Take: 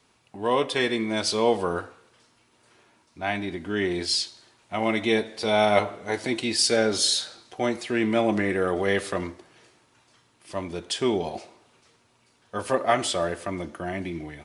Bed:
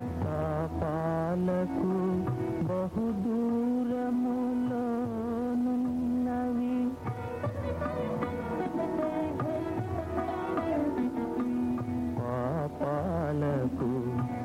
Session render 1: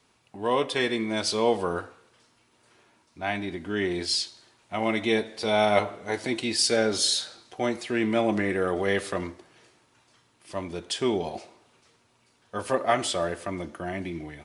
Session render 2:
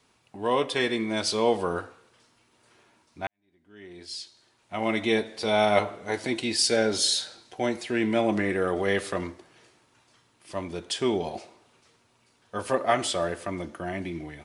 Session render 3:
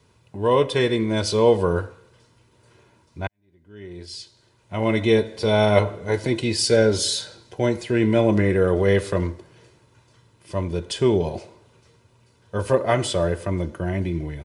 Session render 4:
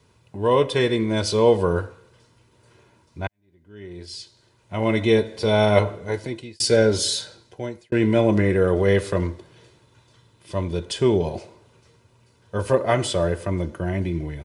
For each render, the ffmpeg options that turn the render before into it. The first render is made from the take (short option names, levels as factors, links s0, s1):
-af "volume=0.841"
-filter_complex "[0:a]asettb=1/sr,asplit=3[s0][s1][s2];[s0]atrim=end=6.344[s3];[s1]atrim=start=6.34:end=8.23,asetpts=PTS-STARTPTS,afade=t=in:d=0.004:c=qsin,afade=t=out:st=1.886:d=0.004:c=qsin,bandreject=f=1200:w=10[s4];[s2]atrim=start=8.226[s5];[s3][s4]acrossfade=d=0.004:c1=hsin:c2=qsin[s6];[s6][s5]acrossfade=d=0.004:c1=qsin:c2=hsin,asplit=2[s7][s8];[s7]atrim=end=3.27,asetpts=PTS-STARTPTS,afade=t=out:st=3.266:d=0.004:c=hsin[s9];[s8]atrim=start=3.27,asetpts=PTS-STARTPTS,afade=t=in:d=1.67:c=qua[s10];[s9][s10]concat=n=2:v=0:a=1"
-af "equalizer=f=98:w=0.33:g=14.5,aecho=1:1:2:0.46"
-filter_complex "[0:a]asettb=1/sr,asplit=3[s0][s1][s2];[s0]atrim=end=9.324[s3];[s1]atrim=start=9.32:end=10.85,asetpts=PTS-STARTPTS,afade=t=in:d=0.004:c=qsin,afade=t=out:st=1.526:d=0.004:c=qsin,equalizer=f=3600:t=o:w=0.33:g=6[s4];[s2]atrim=start=10.846[s5];[s3][s4]acrossfade=d=0.004:c1=hsin:c2=qsin[s6];[s6][s5]acrossfade=d=0.004:c1=qsin:c2=hsin,asplit=3[s7][s8][s9];[s7]atrim=end=6.6,asetpts=PTS-STARTPTS,afade=t=out:st=5.9:d=0.7[s10];[s8]atrim=start=6.6:end=7.92,asetpts=PTS-STARTPTS,afade=t=in:d=0.004:c=hsin,afade=t=out:st=0.55:d=0.77[s11];[s9]atrim=start=7.92,asetpts=PTS-STARTPTS,afade=t=in:d=0.004:c=hsin[s12];[s10][s11][s12]concat=n=3:v=0:a=1"